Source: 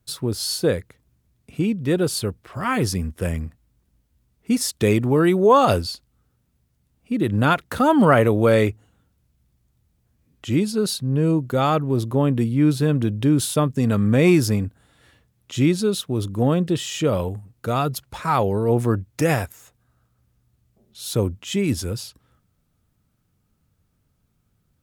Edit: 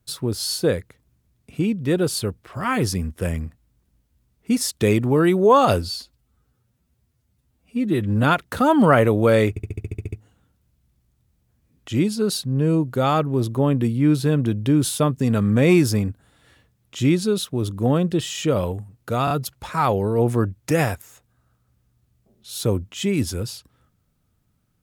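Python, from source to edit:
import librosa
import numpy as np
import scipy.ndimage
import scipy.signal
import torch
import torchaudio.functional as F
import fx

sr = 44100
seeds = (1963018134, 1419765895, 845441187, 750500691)

y = fx.edit(x, sr, fx.stretch_span(start_s=5.82, length_s=1.61, factor=1.5),
    fx.stutter(start_s=8.69, slice_s=0.07, count=10),
    fx.stutter(start_s=17.81, slice_s=0.03, count=3), tone=tone)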